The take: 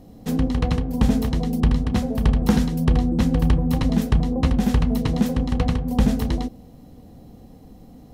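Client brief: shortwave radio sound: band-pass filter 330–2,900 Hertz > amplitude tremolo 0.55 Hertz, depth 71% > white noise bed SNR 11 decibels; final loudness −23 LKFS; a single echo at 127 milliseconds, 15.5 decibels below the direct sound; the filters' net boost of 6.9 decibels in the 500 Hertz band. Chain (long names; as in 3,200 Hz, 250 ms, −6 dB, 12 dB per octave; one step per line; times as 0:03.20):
band-pass filter 330–2,900 Hz
parametric band 500 Hz +8.5 dB
single-tap delay 127 ms −15.5 dB
amplitude tremolo 0.55 Hz, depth 71%
white noise bed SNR 11 dB
level +6.5 dB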